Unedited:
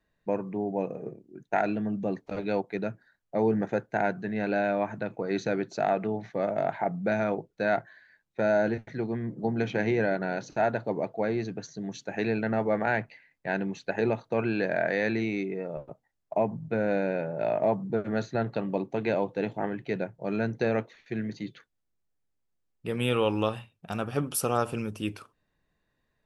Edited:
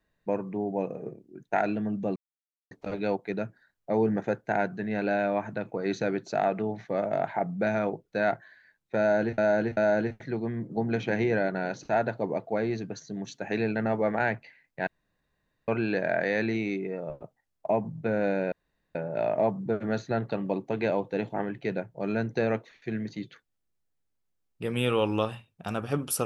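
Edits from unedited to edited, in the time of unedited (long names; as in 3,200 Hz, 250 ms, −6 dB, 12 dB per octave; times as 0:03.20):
0:02.16: splice in silence 0.55 s
0:08.44–0:08.83: repeat, 3 plays
0:13.54–0:14.35: fill with room tone
0:17.19: splice in room tone 0.43 s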